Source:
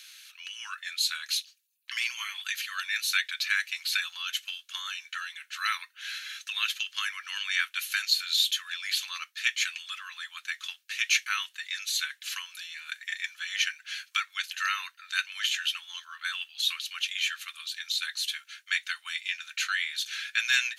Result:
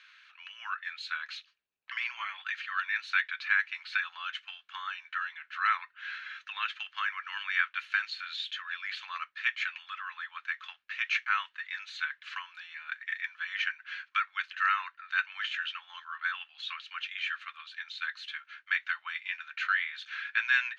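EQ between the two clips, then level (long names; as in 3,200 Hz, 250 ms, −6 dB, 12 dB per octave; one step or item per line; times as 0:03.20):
low-pass filter 1,300 Hz 12 dB per octave
high-frequency loss of the air 51 metres
+8.0 dB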